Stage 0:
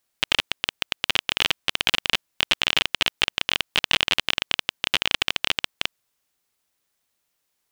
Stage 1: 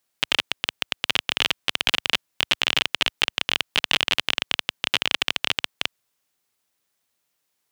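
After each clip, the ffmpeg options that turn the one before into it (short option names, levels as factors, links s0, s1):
-af "highpass=76"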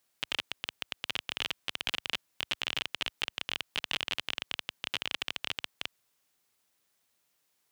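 -af "alimiter=limit=0.2:level=0:latency=1:release=32"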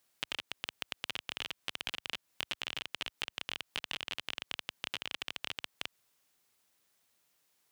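-af "acompressor=threshold=0.02:ratio=6,volume=1.12"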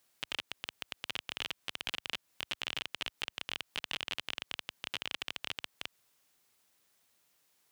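-af "alimiter=limit=0.106:level=0:latency=1:release=13,volume=1.26"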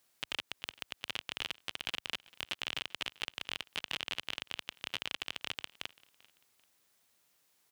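-af "aecho=1:1:391|782:0.0708|0.0248"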